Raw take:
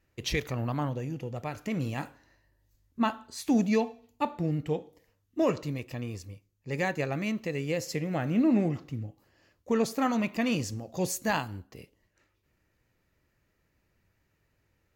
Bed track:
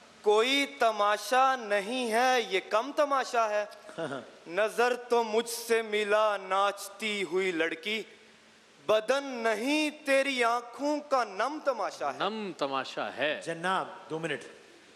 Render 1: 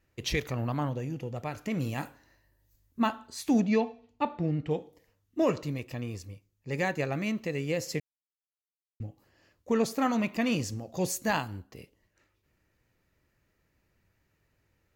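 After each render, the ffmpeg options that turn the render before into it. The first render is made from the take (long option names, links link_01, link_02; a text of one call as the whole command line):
ffmpeg -i in.wav -filter_complex "[0:a]asettb=1/sr,asplit=3[link_01][link_02][link_03];[link_01]atrim=end=1.784[link_04];[link_02]atrim=start=1.78:end=3.08,asetpts=PTS-STARTPTS,afade=type=in:duration=0.004:curve=qsin,afade=type=out:start_time=1.296:duration=0.004:curve=qsin,highshelf=frequency=11000:gain=10[link_05];[link_03]atrim=start=3.076[link_06];[link_04][link_05]acrossfade=duration=0.004:curve1=hsin:curve2=qsin[link_07];[link_07][link_06]acrossfade=duration=0.004:curve1=qsin:curve2=hsin,asettb=1/sr,asplit=3[link_08][link_09][link_10];[link_08]atrim=end=3.604[link_11];[link_09]atrim=start=3.6:end=4.71,asetpts=PTS-STARTPTS,afade=type=in:duration=0.004:curve=qsin,afade=type=out:start_time=1.106:duration=0.004:curve=qsin,lowpass=4400[link_12];[link_10]atrim=start=4.706[link_13];[link_11][link_12]acrossfade=duration=0.004:curve1=hsin:curve2=qsin[link_14];[link_14][link_13]acrossfade=duration=0.004:curve1=qsin:curve2=hsin,asplit=3[link_15][link_16][link_17];[link_15]atrim=end=8,asetpts=PTS-STARTPTS,afade=type=out:start_time=7.996:duration=0.004:curve=hsin[link_18];[link_16]atrim=start=8:end=9,asetpts=PTS-STARTPTS,volume=0[link_19];[link_17]atrim=start=9,asetpts=PTS-STARTPTS,afade=type=in:duration=0.004:curve=hsin[link_20];[link_18][link_19][link_20]concat=n=3:v=0:a=1" out.wav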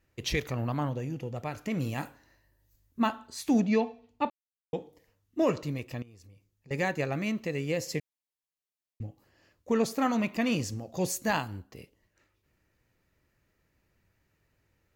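ffmpeg -i in.wav -filter_complex "[0:a]asettb=1/sr,asplit=3[link_01][link_02][link_03];[link_01]atrim=end=6.024[link_04];[link_02]atrim=start=6.02:end=6.71,asetpts=PTS-STARTPTS,afade=type=in:duration=0.004:curve=qsin,afade=type=out:start_time=0.686:duration=0.004:curve=qsin,acompressor=threshold=-50dB:ratio=12:attack=3.2:release=140:knee=1:detection=peak[link_05];[link_03]atrim=start=6.706[link_06];[link_04][link_05]acrossfade=duration=0.004:curve1=hsin:curve2=qsin[link_07];[link_07][link_06]acrossfade=duration=0.004:curve1=qsin:curve2=hsin,asettb=1/sr,asplit=3[link_08][link_09][link_10];[link_08]atrim=end=7.774[link_11];[link_09]atrim=start=7.77:end=9.06,asetpts=PTS-STARTPTS,afade=type=in:duration=0.004:curve=qsin,afade=type=out:start_time=1.286:duration=0.004:curve=qsin,asuperstop=centerf=1400:order=4:qfactor=6.3[link_12];[link_10]atrim=start=9.056[link_13];[link_11][link_12]acrossfade=duration=0.004:curve1=hsin:curve2=qsin[link_14];[link_14][link_13]acrossfade=duration=0.004:curve1=qsin:curve2=hsin,asplit=3[link_15][link_16][link_17];[link_15]atrim=end=4.3,asetpts=PTS-STARTPTS,afade=type=out:start_time=4.296:duration=0.004:curve=hsin[link_18];[link_16]atrim=start=4.3:end=4.73,asetpts=PTS-STARTPTS,volume=0[link_19];[link_17]atrim=start=4.73,asetpts=PTS-STARTPTS,afade=type=in:duration=0.004:curve=hsin[link_20];[link_18][link_19][link_20]concat=n=3:v=0:a=1" out.wav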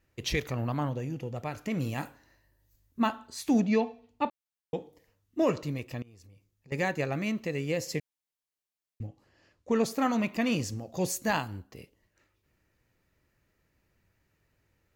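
ffmpeg -i in.wav -filter_complex "[0:a]asettb=1/sr,asplit=3[link_01][link_02][link_03];[link_01]atrim=end=6.024[link_04];[link_02]atrim=start=6.02:end=6.72,asetpts=PTS-STARTPTS,afade=type=in:duration=0.004:curve=qsin,afade=type=out:start_time=0.696:duration=0.004:curve=qsin,acompressor=threshold=-50dB:ratio=6:attack=3.2:release=140:knee=1:detection=peak[link_05];[link_03]atrim=start=6.716[link_06];[link_04][link_05]acrossfade=duration=0.004:curve1=hsin:curve2=qsin[link_07];[link_07][link_06]acrossfade=duration=0.004:curve1=qsin:curve2=hsin,asettb=1/sr,asplit=3[link_08][link_09][link_10];[link_08]atrim=end=9.074[link_11];[link_09]atrim=start=9.07:end=9.74,asetpts=PTS-STARTPTS,afade=type=in:duration=0.004:curve=qsin,afade=type=out:start_time=0.666:duration=0.004:curve=qsin,lowpass=7900[link_12];[link_10]atrim=start=9.736[link_13];[link_11][link_12]acrossfade=duration=0.004:curve1=hsin:curve2=qsin[link_14];[link_14][link_13]acrossfade=duration=0.004:curve1=qsin:curve2=hsin" out.wav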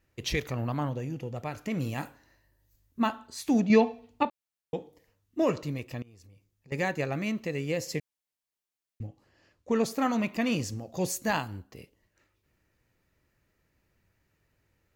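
ffmpeg -i in.wav -filter_complex "[0:a]asplit=3[link_01][link_02][link_03];[link_01]atrim=end=3.702[link_04];[link_02]atrim=start=3.698:end=4.232,asetpts=PTS-STARTPTS,volume=5.5dB[link_05];[link_03]atrim=start=4.228[link_06];[link_04][link_05]acrossfade=duration=0.004:curve1=hsin:curve2=hsin[link_07];[link_07][link_06]acrossfade=duration=0.004:curve1=hsin:curve2=hsin" out.wav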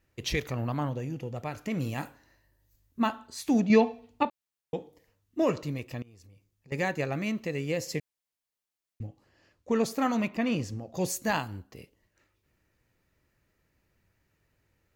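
ffmpeg -i in.wav -filter_complex "[0:a]asettb=1/sr,asplit=3[link_01][link_02][link_03];[link_01]atrim=end=10.284[link_04];[link_02]atrim=start=10.28:end=10.95,asetpts=PTS-STARTPTS,afade=type=in:duration=0.004:curve=qsin,afade=type=out:start_time=0.666:duration=0.004:curve=qsin,highshelf=frequency=4400:gain=-10.5[link_05];[link_03]atrim=start=10.946[link_06];[link_04][link_05]acrossfade=duration=0.004:curve1=hsin:curve2=qsin[link_07];[link_07][link_06]acrossfade=duration=0.004:curve1=qsin:curve2=hsin" out.wav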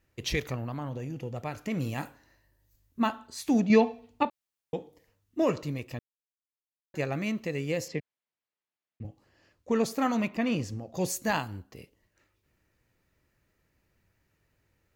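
ffmpeg -i in.wav -filter_complex "[0:a]asettb=1/sr,asplit=3[link_01][link_02][link_03];[link_01]atrim=end=0.554[link_04];[link_02]atrim=start=0.55:end=1.18,asetpts=PTS-STARTPTS,afade=type=in:duration=0.004:curve=qsin,afade=type=out:start_time=0.626:duration=0.004:curve=qsin,acompressor=threshold=-32dB:ratio=4:attack=3.2:release=140:knee=1:detection=peak[link_05];[link_03]atrim=start=1.176[link_06];[link_04][link_05]acrossfade=duration=0.004:curve1=hsin:curve2=qsin[link_07];[link_07][link_06]acrossfade=duration=0.004:curve1=qsin:curve2=hsin,asettb=1/sr,asplit=3[link_08][link_09][link_10];[link_08]atrim=end=7.884[link_11];[link_09]atrim=start=7.88:end=9.05,asetpts=PTS-STARTPTS,afade=type=in:duration=0.004:curve=qsin,afade=type=out:start_time=1.166:duration=0.004:curve=qsin,highpass=110,lowpass=3100[link_12];[link_10]atrim=start=9.046[link_13];[link_11][link_12]acrossfade=duration=0.004:curve1=hsin:curve2=qsin[link_14];[link_14][link_13]acrossfade=duration=0.004:curve1=qsin:curve2=hsin,asplit=3[link_15][link_16][link_17];[link_15]atrim=end=5.99,asetpts=PTS-STARTPTS,afade=type=out:start_time=5.986:duration=0.004:curve=hsin[link_18];[link_16]atrim=start=5.99:end=6.94,asetpts=PTS-STARTPTS,volume=0[link_19];[link_17]atrim=start=6.94,asetpts=PTS-STARTPTS,afade=type=in:duration=0.004:curve=hsin[link_20];[link_18][link_19][link_20]concat=n=3:v=0:a=1" out.wav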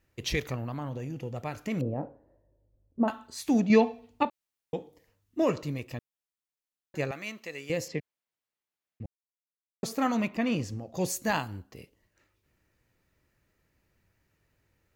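ffmpeg -i in.wav -filter_complex "[0:a]asettb=1/sr,asplit=3[link_01][link_02][link_03];[link_01]atrim=end=1.814[link_04];[link_02]atrim=start=1.81:end=3.08,asetpts=PTS-STARTPTS,afade=type=in:duration=0.004:curve=qsin,afade=type=out:start_time=1.266:duration=0.004:curve=qsin,lowpass=frequency=550:width_type=q:width=2.8[link_05];[link_03]atrim=start=3.076[link_06];[link_04][link_05]acrossfade=duration=0.004:curve1=hsin:curve2=qsin[link_07];[link_07][link_06]acrossfade=duration=0.004:curve1=qsin:curve2=hsin,asettb=1/sr,asplit=3[link_08][link_09][link_10];[link_08]atrim=end=7.114[link_11];[link_09]atrim=start=7.11:end=7.7,asetpts=PTS-STARTPTS,afade=type=in:duration=0.004:curve=qsin,afade=type=out:start_time=0.586:duration=0.004:curve=qsin,highpass=frequency=1100:poles=1[link_12];[link_10]atrim=start=7.696[link_13];[link_11][link_12]acrossfade=duration=0.004:curve1=hsin:curve2=qsin[link_14];[link_14][link_13]acrossfade=duration=0.004:curve1=qsin:curve2=hsin,asplit=3[link_15][link_16][link_17];[link_15]atrim=end=9.06,asetpts=PTS-STARTPTS,afade=type=out:start_time=9.056:duration=0.004:curve=hsin[link_18];[link_16]atrim=start=9.06:end=9.83,asetpts=PTS-STARTPTS,volume=0[link_19];[link_17]atrim=start=9.83,asetpts=PTS-STARTPTS,afade=type=in:duration=0.004:curve=hsin[link_20];[link_18][link_19][link_20]concat=n=3:v=0:a=1" out.wav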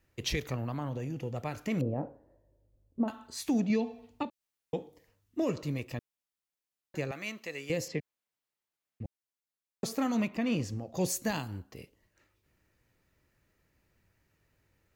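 ffmpeg -i in.wav -filter_complex "[0:a]acrossover=split=460|3000[link_01][link_02][link_03];[link_02]acompressor=threshold=-34dB:ratio=6[link_04];[link_01][link_04][link_03]amix=inputs=3:normalize=0,alimiter=limit=-20.5dB:level=0:latency=1:release=237" out.wav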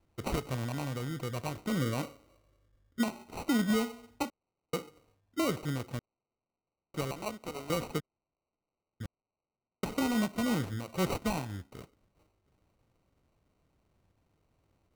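ffmpeg -i in.wav -af "acrusher=samples=26:mix=1:aa=0.000001" out.wav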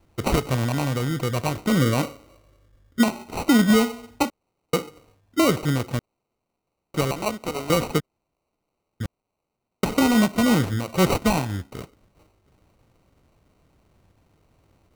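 ffmpeg -i in.wav -af "volume=11.5dB" out.wav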